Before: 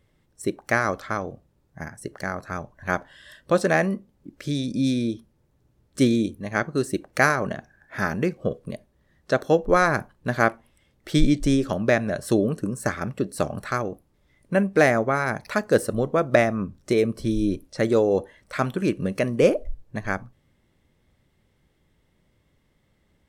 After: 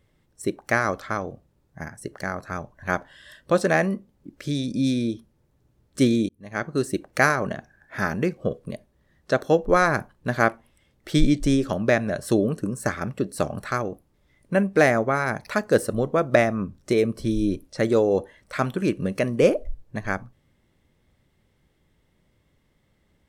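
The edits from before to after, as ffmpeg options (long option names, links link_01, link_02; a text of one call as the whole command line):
ffmpeg -i in.wav -filter_complex "[0:a]asplit=2[link_01][link_02];[link_01]atrim=end=6.29,asetpts=PTS-STARTPTS,afade=type=out:start_time=6.286:duration=0.004:curve=hsin[link_03];[link_02]atrim=start=6.29,asetpts=PTS-STARTPTS,afade=type=in:duration=0.47[link_04];[link_03][link_04]concat=n=2:v=0:a=1" out.wav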